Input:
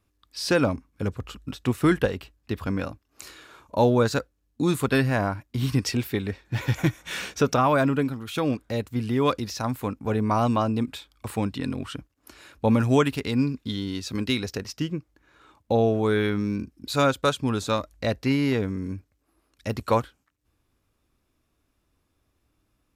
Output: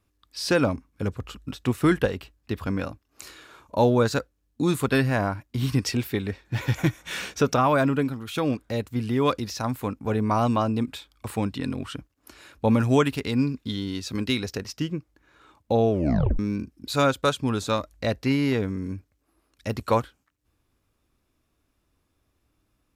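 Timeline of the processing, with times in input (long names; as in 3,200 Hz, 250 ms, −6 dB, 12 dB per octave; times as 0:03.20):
0:15.91: tape stop 0.48 s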